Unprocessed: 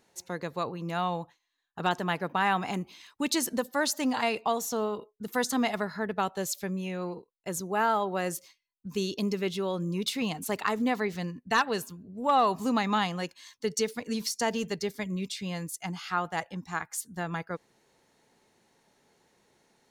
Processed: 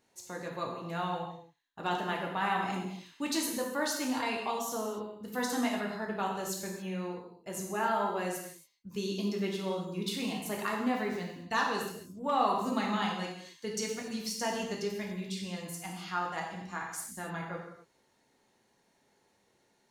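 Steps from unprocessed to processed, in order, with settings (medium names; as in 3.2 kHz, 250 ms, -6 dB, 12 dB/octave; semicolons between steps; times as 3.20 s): gated-style reverb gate 310 ms falling, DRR -1.5 dB; trim -7.5 dB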